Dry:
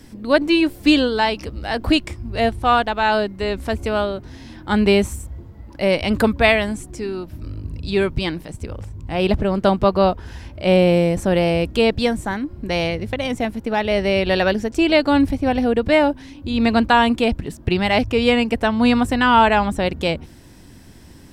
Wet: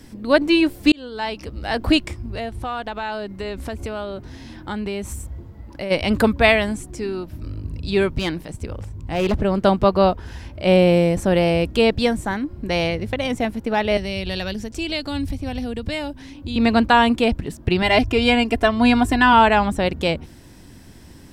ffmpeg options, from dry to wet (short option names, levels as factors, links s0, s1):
-filter_complex "[0:a]asplit=3[s0][s1][s2];[s0]afade=t=out:st=2.21:d=0.02[s3];[s1]acompressor=threshold=0.0562:ratio=4:attack=3.2:release=140:knee=1:detection=peak,afade=t=in:st=2.21:d=0.02,afade=t=out:st=5.9:d=0.02[s4];[s2]afade=t=in:st=5.9:d=0.02[s5];[s3][s4][s5]amix=inputs=3:normalize=0,asettb=1/sr,asplit=3[s6][s7][s8];[s6]atrim=end=8.174[s9];[s7]atrim=start=8.17:end=9.39,asetpts=PTS-STARTPTS,afade=t=in:d=0.004:c=qsin,afade=t=out:st=1.216:d=0.004:c=qsin,asoftclip=type=hard:threshold=0.178[s10];[s8]atrim=start=9.386[s11];[s9][s10]acrossfade=d=0.004:c1=hsin:c2=qsin[s12];[s12][s11]acrossfade=d=0.004:c1=qsin:c2=hsin,asettb=1/sr,asplit=3[s13][s14][s15];[s13]atrim=end=13.974[s16];[s14]atrim=start=13.97:end=16.56,asetpts=PTS-STARTPTS,afade=t=in:d=0.004:c=qsin,afade=t=out:st=2.586:d=0.004:c=qsin,acrossover=split=170|3000[s17][s18][s19];[s18]acompressor=threshold=0.02:ratio=2.5:attack=3.2:release=140:knee=2.83:detection=peak[s20];[s17][s20][s19]amix=inputs=3:normalize=0[s21];[s15]atrim=start=16.556[s22];[s16][s21]acrossfade=d=0.004:c1=hsin:c2=qsin[s23];[s23][s22]acrossfade=d=0.004:c1=qsin:c2=hsin,asettb=1/sr,asplit=3[s24][s25][s26];[s24]atrim=end=17.824[s27];[s25]atrim=start=17.82:end=19.33,asetpts=PTS-STARTPTS,afade=t=in:d=0.004:c=qsin,afade=t=out:st=1.506:d=0.004:c=qsin,aecho=1:1:2.9:0.66,atrim=end_sample=66591[s28];[s26]atrim=start=19.326[s29];[s27][s28]acrossfade=d=0.004:c1=hsin:c2=qsin[s30];[s30][s29]acrossfade=d=0.004:c1=qsin:c2=hsin,asplit=2[s31][s32];[s31]atrim=end=0.92,asetpts=PTS-STARTPTS,afade=t=out:st=0.916:d=0.004:c=hsin[s33];[s32]atrim=start=0.92,asetpts=PTS-STARTPTS,afade=t=in:d=0.77[s34];[s33][s34]concat=n=2:v=0:a=1"